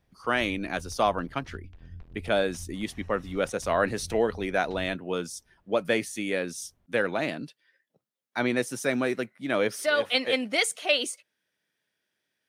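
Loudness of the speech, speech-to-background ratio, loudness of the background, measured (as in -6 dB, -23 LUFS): -28.0 LUFS, 20.0 dB, -48.0 LUFS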